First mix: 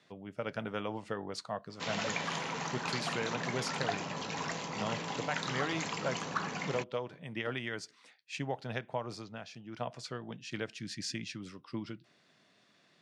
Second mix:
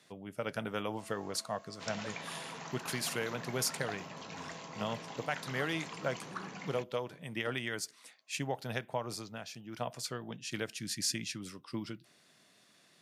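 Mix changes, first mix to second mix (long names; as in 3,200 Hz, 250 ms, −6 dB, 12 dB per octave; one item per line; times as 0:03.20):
speech: remove high-frequency loss of the air 110 metres
first sound: unmuted
second sound −8.0 dB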